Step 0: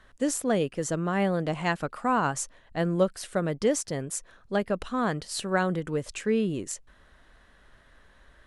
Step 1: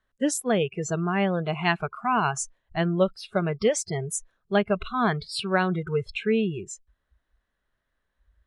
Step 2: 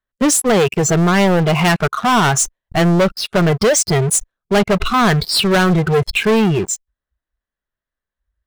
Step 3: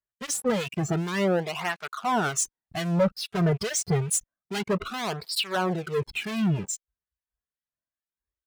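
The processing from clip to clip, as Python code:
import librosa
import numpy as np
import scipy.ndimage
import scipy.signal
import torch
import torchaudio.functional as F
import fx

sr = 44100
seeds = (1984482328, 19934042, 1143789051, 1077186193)

y1 = fx.noise_reduce_blind(x, sr, reduce_db=23)
y1 = fx.dynamic_eq(y1, sr, hz=2700.0, q=2.3, threshold_db=-48.0, ratio=4.0, max_db=5)
y1 = fx.rider(y1, sr, range_db=3, speed_s=0.5)
y1 = F.gain(torch.from_numpy(y1), 3.0).numpy()
y2 = fx.leveller(y1, sr, passes=5)
y3 = fx.rattle_buzz(y2, sr, strikes_db=-29.0, level_db=-32.0)
y3 = fx.harmonic_tremolo(y3, sr, hz=2.3, depth_pct=70, crossover_hz=1800.0)
y3 = fx.flanger_cancel(y3, sr, hz=0.28, depth_ms=3.9)
y3 = F.gain(torch.from_numpy(y3), -6.5).numpy()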